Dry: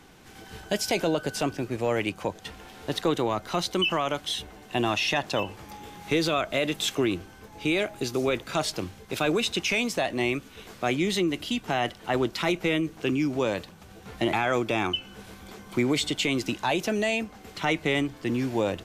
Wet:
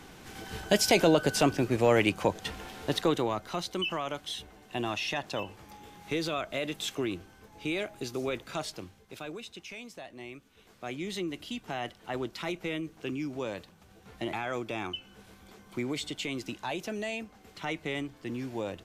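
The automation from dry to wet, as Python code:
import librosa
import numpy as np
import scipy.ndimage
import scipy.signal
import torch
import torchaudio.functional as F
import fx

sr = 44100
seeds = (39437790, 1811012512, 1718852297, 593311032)

y = fx.gain(x, sr, db=fx.line((2.62, 3.0), (3.63, -7.0), (8.49, -7.0), (9.49, -18.0), (10.29, -18.0), (11.21, -9.0)))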